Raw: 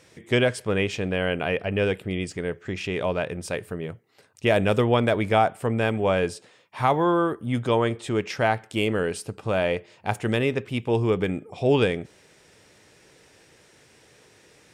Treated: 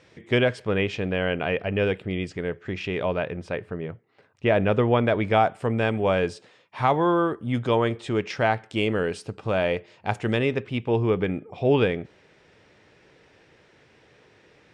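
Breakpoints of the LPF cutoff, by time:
2.95 s 4200 Hz
3.58 s 2500 Hz
4.89 s 2500 Hz
5.52 s 5600 Hz
10.44 s 5600 Hz
10.96 s 3300 Hz

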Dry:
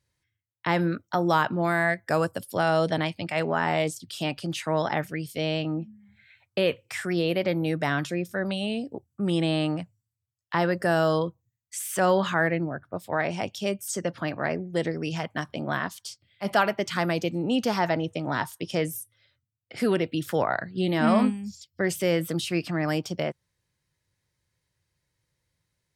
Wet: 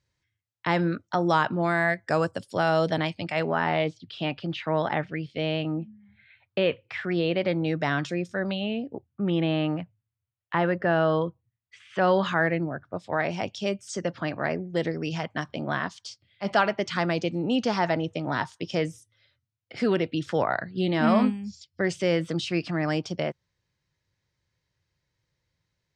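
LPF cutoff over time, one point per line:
LPF 24 dB/oct
3.23 s 7300 Hz
3.88 s 3800 Hz
7.08 s 3800 Hz
8.26 s 7500 Hz
8.7 s 3200 Hz
11.87 s 3200 Hz
12.31 s 6400 Hz

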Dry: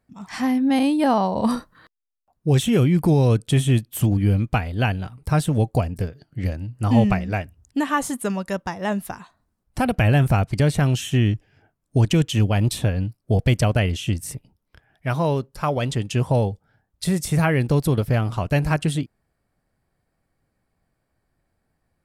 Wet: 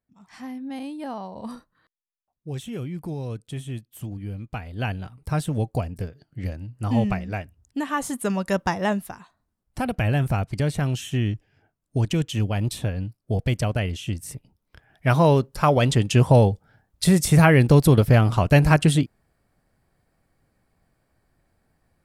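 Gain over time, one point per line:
4.37 s -14.5 dB
4.91 s -5 dB
7.88 s -5 dB
8.74 s +5.5 dB
9.09 s -5 dB
14.21 s -5 dB
15.07 s +4.5 dB

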